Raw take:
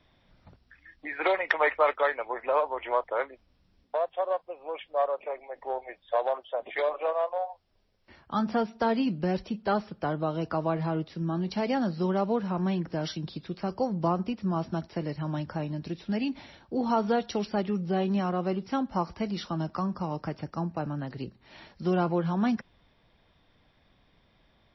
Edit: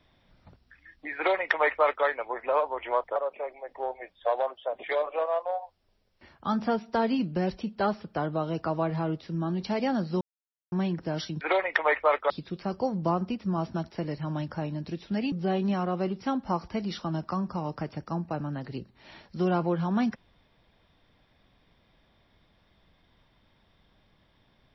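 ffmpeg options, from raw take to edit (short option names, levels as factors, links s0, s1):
-filter_complex "[0:a]asplit=7[s0][s1][s2][s3][s4][s5][s6];[s0]atrim=end=3.162[s7];[s1]atrim=start=5.028:end=12.08,asetpts=PTS-STARTPTS,afade=t=out:st=7.048:d=0.004:c=hsin[s8];[s2]atrim=start=12.08:end=12.59,asetpts=PTS-STARTPTS,volume=0[s9];[s3]atrim=start=12.59:end=13.282,asetpts=PTS-STARTPTS,afade=t=in:d=0.004:c=hsin[s10];[s4]atrim=start=1.158:end=2.052[s11];[s5]atrim=start=13.278:end=16.302[s12];[s6]atrim=start=17.778[s13];[s8][s9][s10]concat=n=3:v=0:a=1[s14];[s7][s14]acrossfade=d=0.004:c1=hsin:c2=hsin[s15];[s15][s11]acrossfade=d=0.004:c1=hsin:c2=hsin[s16];[s16][s12]acrossfade=d=0.004:c1=hsin:c2=hsin[s17];[s17][s13]acrossfade=d=0.004:c1=hsin:c2=hsin"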